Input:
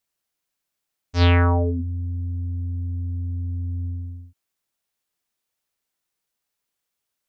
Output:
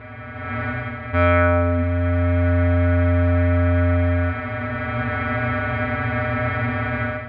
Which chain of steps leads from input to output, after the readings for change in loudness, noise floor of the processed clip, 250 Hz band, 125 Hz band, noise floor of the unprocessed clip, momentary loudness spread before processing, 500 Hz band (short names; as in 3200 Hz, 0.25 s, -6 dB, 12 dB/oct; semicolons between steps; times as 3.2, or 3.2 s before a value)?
+3.5 dB, -33 dBFS, +8.5 dB, +5.0 dB, -82 dBFS, 13 LU, +11.0 dB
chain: per-bin compression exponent 0.2; LPF 2100 Hz 24 dB/oct; AGC gain up to 15 dB; metallic resonator 120 Hz, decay 0.23 s, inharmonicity 0.002; gain +4.5 dB